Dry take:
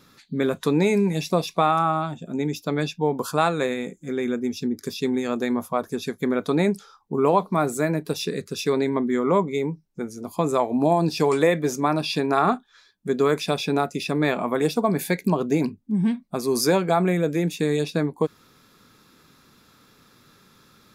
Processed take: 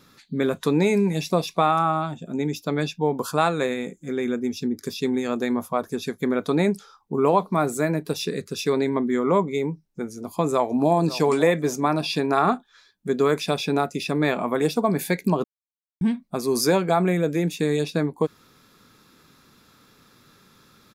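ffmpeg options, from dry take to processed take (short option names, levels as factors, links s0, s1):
-filter_complex "[0:a]asplit=2[s0][s1];[s1]afade=t=in:st=10.14:d=0.01,afade=t=out:st=10.96:d=0.01,aecho=0:1:550|1100|1650:0.177828|0.044457|0.0111142[s2];[s0][s2]amix=inputs=2:normalize=0,asplit=3[s3][s4][s5];[s3]atrim=end=15.44,asetpts=PTS-STARTPTS,afade=t=out:st=15.436:d=0.004:c=hsin[s6];[s4]atrim=start=15.44:end=16.01,asetpts=PTS-STARTPTS,volume=0[s7];[s5]atrim=start=16.01,asetpts=PTS-STARTPTS,afade=t=in:d=0.004:c=hsin[s8];[s6][s7][s8]concat=n=3:v=0:a=1"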